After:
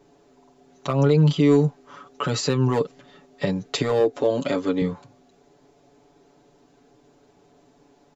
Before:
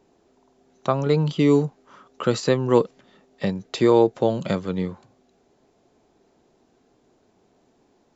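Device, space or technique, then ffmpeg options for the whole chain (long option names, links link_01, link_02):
clipper into limiter: -filter_complex "[0:a]asoftclip=type=hard:threshold=-9dB,alimiter=limit=-16.5dB:level=0:latency=1:release=95,aecho=1:1:7:0.98,asettb=1/sr,asplit=3[link_01][link_02][link_03];[link_01]atrim=end=4.004[link_04];[link_02]atrim=start=4:end=4.82,asetpts=PTS-STARTPTS,afade=type=in:duration=0.004:curve=qsin,afade=type=out:start_time=0.816:duration=0.004:curve=qsin,lowshelf=frequency=210:width_type=q:width=3:gain=-6.5[link_05];[link_03]atrim=start=4.816[link_06];[link_04][link_05]acrossfade=duration=0.004:curve1=hsin:curve2=qsin[link_07];[link_07][link_06]acrossfade=duration=0.004:curve1=qsin:curve2=hsin,volume=2dB"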